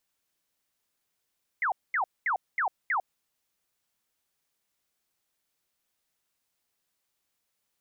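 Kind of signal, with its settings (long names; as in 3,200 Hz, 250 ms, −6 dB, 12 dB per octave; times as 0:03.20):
repeated falling chirps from 2,200 Hz, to 690 Hz, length 0.10 s sine, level −24 dB, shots 5, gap 0.22 s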